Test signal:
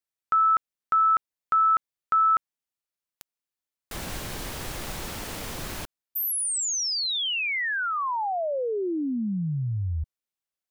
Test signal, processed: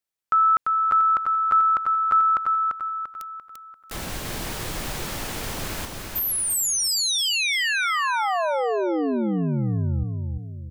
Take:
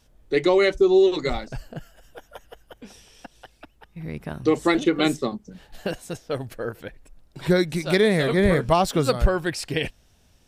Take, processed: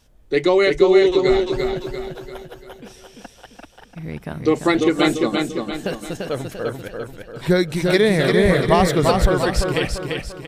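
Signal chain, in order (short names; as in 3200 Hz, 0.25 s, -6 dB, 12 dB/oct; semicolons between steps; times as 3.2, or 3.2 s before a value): feedback echo 0.343 s, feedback 45%, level -4 dB; gain +2.5 dB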